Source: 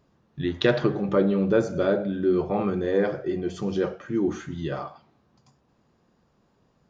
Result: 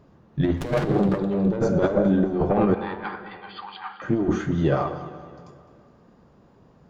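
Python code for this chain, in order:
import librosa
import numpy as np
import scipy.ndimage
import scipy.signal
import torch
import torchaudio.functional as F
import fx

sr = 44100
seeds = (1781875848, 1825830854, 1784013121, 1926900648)

y = fx.diode_clip(x, sr, knee_db=-22.5)
y = fx.high_shelf(y, sr, hz=2100.0, db=-10.5)
y = fx.over_compress(y, sr, threshold_db=-28.0, ratio=-0.5)
y = fx.brickwall_bandpass(y, sr, low_hz=750.0, high_hz=4900.0, at=(2.74, 4.02))
y = fx.echo_feedback(y, sr, ms=208, feedback_pct=51, wet_db=-16.0)
y = fx.rev_plate(y, sr, seeds[0], rt60_s=2.4, hf_ratio=0.9, predelay_ms=0, drr_db=14.0)
y = fx.running_max(y, sr, window=9, at=(0.57, 1.19))
y = y * librosa.db_to_amplitude(8.5)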